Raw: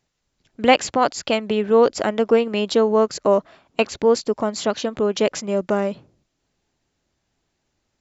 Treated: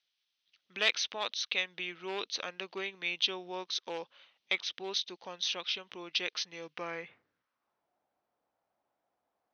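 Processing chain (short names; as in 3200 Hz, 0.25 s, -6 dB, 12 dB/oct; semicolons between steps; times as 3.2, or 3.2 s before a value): varispeed -16%; hard clip -7.5 dBFS, distortion -22 dB; band-pass sweep 3400 Hz -> 790 Hz, 6.59–7.89; gain +1 dB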